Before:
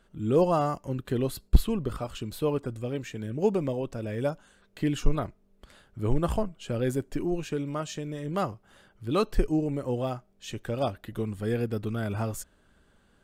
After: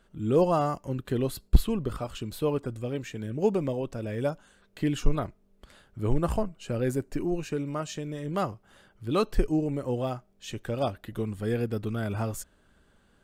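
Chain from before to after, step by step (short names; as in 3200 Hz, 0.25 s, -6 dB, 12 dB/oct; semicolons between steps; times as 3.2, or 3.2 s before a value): 6.19–7.89 notch 3300 Hz, Q 7.3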